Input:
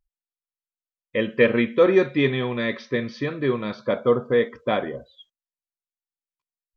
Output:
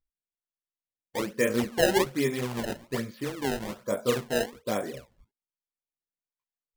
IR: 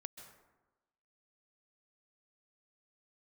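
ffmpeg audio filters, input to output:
-af "aemphasis=mode=reproduction:type=50fm,flanger=delay=15:depth=5.2:speed=2.4,acrusher=samples=22:mix=1:aa=0.000001:lfo=1:lforange=35.2:lforate=1.2,volume=-3.5dB"

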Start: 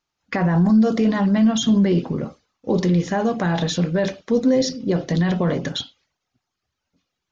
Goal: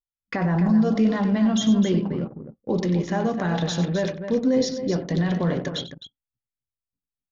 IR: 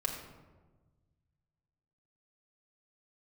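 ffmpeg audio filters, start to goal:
-af "aecho=1:1:93.29|259.5:0.282|0.355,anlmdn=10,volume=-4dB"

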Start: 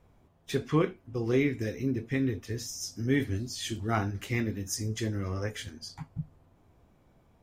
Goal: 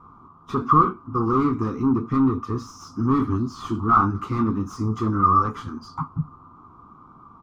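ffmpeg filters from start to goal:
ffmpeg -i in.wav -filter_complex "[0:a]asplit=2[link_01][link_02];[link_02]highpass=frequency=720:poles=1,volume=25dB,asoftclip=type=tanh:threshold=-13.5dB[link_03];[link_01][link_03]amix=inputs=2:normalize=0,lowpass=frequency=5400:poles=1,volume=-6dB,firequalizer=gain_entry='entry(270,0);entry(580,-22);entry(1200,12);entry(1700,-27);entry(4800,-24);entry(8300,-29)':delay=0.05:min_phase=1,volume=5dB" out.wav

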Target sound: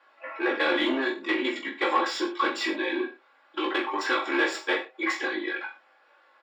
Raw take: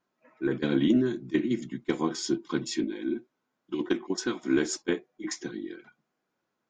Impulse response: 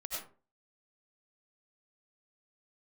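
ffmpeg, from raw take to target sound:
-filter_complex "[0:a]equalizer=frequency=140:width=0.55:gain=-12,asplit=2[link_01][link_02];[link_02]acompressor=threshold=-46dB:ratio=6,volume=2.5dB[link_03];[link_01][link_03]amix=inputs=2:normalize=0,asplit=2[link_04][link_05];[link_05]highpass=frequency=720:poles=1,volume=22dB,asoftclip=type=tanh:threshold=-15dB[link_06];[link_04][link_06]amix=inputs=2:normalize=0,lowpass=frequency=2100:poles=1,volume=-6dB,acrossover=split=330 4300:gain=0.0708 1 0.224[link_07][link_08][link_09];[link_07][link_08][link_09]amix=inputs=3:normalize=0,bandreject=frequency=5900:width=5.7,aecho=1:1:3.7:0.55,aecho=1:1:20|42|66.2|92.82|122.1:0.631|0.398|0.251|0.158|0.1,asetrate=45938,aresample=44100"

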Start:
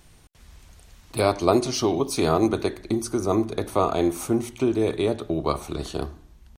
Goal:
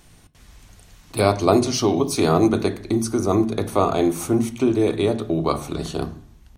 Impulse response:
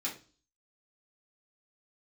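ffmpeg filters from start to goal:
-filter_complex "[0:a]asplit=2[link_01][link_02];[link_02]equalizer=frequency=120:width=0.6:gain=13.5[link_03];[1:a]atrim=start_sample=2205,asetrate=34398,aresample=44100[link_04];[link_03][link_04]afir=irnorm=-1:irlink=0,volume=-16.5dB[link_05];[link_01][link_05]amix=inputs=2:normalize=0,volume=2dB"

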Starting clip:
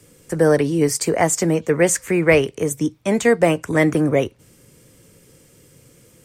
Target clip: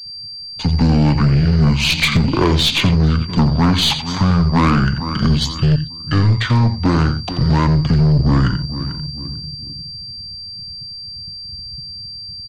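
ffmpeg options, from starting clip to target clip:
ffmpeg -i in.wav -filter_complex "[0:a]equalizer=frequency=250:width_type=o:width=1:gain=9,equalizer=frequency=500:width_type=o:width=1:gain=-6,equalizer=frequency=4000:width_type=o:width=1:gain=9,equalizer=frequency=8000:width_type=o:width=1:gain=-6,asplit=2[link_01][link_02];[link_02]adelay=222,lowpass=frequency=4800:poles=1,volume=-17.5dB,asplit=2[link_03][link_04];[link_04]adelay=222,lowpass=frequency=4800:poles=1,volume=0.47,asplit=2[link_05][link_06];[link_06]adelay=222,lowpass=frequency=4800:poles=1,volume=0.47,asplit=2[link_07][link_08];[link_08]adelay=222,lowpass=frequency=4800:poles=1,volume=0.47[link_09];[link_01][link_03][link_05][link_07][link_09]amix=inputs=5:normalize=0,acrossover=split=130|1300|2000[link_10][link_11][link_12][link_13];[link_12]aeval=exprs='max(val(0),0)':channel_layout=same[link_14];[link_10][link_11][link_14][link_13]amix=inputs=4:normalize=0,anlmdn=0.398,dynaudnorm=framelen=130:gausssize=11:maxgain=9.5dB,aeval=exprs='val(0)+0.0126*sin(2*PI*9400*n/s)':channel_layout=same,equalizer=frequency=6800:width_type=o:width=1.9:gain=2.5,acompressor=threshold=-15dB:ratio=3,asplit=2[link_15][link_16];[link_16]adelay=43,volume=-11dB[link_17];[link_15][link_17]amix=inputs=2:normalize=0,asetrate=22050,aresample=44100,aeval=exprs='0.531*(cos(1*acos(clip(val(0)/0.531,-1,1)))-cos(1*PI/2))+0.0668*(cos(5*acos(clip(val(0)/0.531,-1,1)))-cos(5*PI/2))+0.0376*(cos(8*acos(clip(val(0)/0.531,-1,1)))-cos(8*PI/2))':channel_layout=same,volume=1.5dB" out.wav

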